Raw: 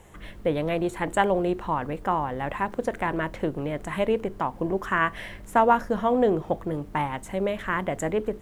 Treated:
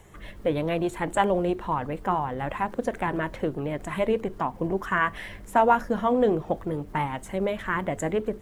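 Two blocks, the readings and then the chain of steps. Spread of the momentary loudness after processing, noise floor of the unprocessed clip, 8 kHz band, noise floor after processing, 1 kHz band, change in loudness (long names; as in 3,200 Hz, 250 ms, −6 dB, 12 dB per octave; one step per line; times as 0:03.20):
8 LU, −44 dBFS, −0.5 dB, −44 dBFS, −0.5 dB, −0.5 dB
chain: spectral magnitudes quantised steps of 15 dB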